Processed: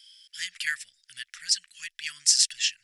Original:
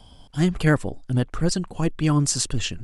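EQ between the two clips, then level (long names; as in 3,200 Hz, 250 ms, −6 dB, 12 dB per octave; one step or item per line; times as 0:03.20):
elliptic high-pass filter 1,800 Hz, stop band 50 dB
parametric band 5,300 Hz +7.5 dB 0.23 octaves
+2.5 dB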